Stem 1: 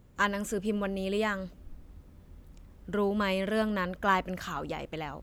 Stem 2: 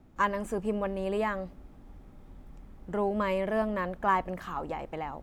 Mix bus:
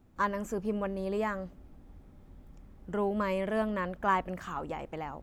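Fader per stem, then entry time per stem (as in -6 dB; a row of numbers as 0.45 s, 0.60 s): -9.5 dB, -5.5 dB; 0.00 s, 0.00 s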